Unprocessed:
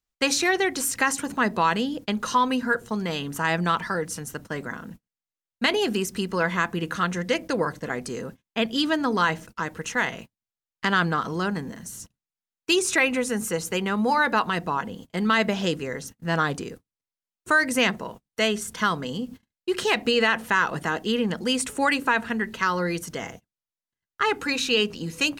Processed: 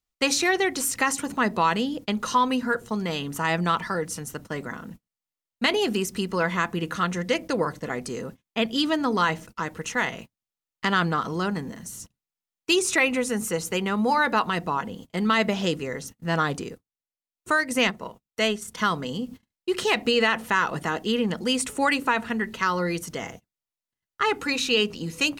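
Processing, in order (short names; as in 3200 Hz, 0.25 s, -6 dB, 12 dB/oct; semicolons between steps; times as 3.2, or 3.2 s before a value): 16.69–18.79 transient shaper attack -1 dB, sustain -7 dB; notch 1600 Hz, Q 13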